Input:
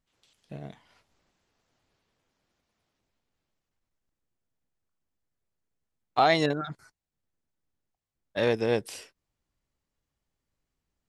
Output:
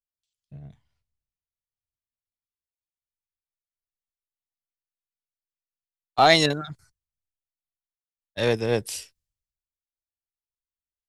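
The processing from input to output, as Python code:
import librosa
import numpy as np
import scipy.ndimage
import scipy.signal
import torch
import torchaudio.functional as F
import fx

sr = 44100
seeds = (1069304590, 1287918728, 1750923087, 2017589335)

p1 = fx.high_shelf(x, sr, hz=4100.0, db=8.0)
p2 = 10.0 ** (-19.0 / 20.0) * np.tanh(p1 / 10.0 ** (-19.0 / 20.0))
p3 = p1 + (p2 * librosa.db_to_amplitude(-6.0))
p4 = fx.band_widen(p3, sr, depth_pct=100)
y = p4 * librosa.db_to_amplitude(-3.5)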